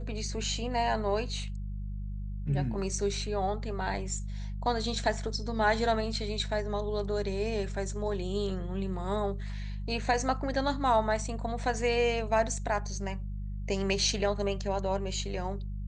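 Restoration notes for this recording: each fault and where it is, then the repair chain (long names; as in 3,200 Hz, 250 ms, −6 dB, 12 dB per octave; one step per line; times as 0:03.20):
mains hum 50 Hz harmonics 4 −36 dBFS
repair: hum removal 50 Hz, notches 4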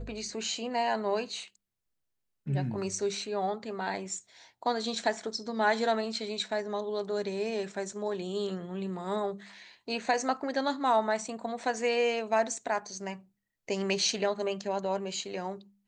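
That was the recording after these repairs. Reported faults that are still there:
none of them is left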